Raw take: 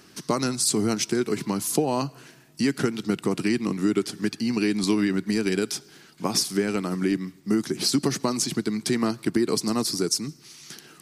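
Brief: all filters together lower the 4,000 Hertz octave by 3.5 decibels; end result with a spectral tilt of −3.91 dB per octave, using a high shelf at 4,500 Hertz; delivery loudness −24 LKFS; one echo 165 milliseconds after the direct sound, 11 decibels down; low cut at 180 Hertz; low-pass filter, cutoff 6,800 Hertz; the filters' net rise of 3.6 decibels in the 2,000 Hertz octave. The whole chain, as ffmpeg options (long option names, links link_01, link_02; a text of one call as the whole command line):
ffmpeg -i in.wav -af "highpass=180,lowpass=6800,equalizer=frequency=2000:width_type=o:gain=5.5,equalizer=frequency=4000:width_type=o:gain=-7.5,highshelf=frequency=4500:gain=4,aecho=1:1:165:0.282,volume=2dB" out.wav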